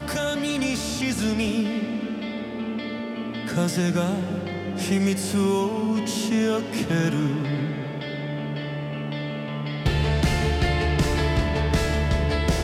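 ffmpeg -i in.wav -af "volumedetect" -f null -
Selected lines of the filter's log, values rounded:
mean_volume: -24.3 dB
max_volume: -10.6 dB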